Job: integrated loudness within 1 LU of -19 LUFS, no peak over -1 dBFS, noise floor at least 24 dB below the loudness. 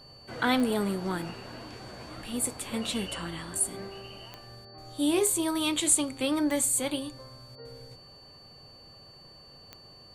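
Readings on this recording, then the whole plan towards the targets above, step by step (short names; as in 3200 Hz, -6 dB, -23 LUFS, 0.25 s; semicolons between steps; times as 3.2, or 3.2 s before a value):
clicks 6; steady tone 4500 Hz; tone level -51 dBFS; loudness -28.0 LUFS; peak -8.5 dBFS; loudness target -19.0 LUFS
-> de-click; notch 4500 Hz, Q 30; gain +9 dB; limiter -1 dBFS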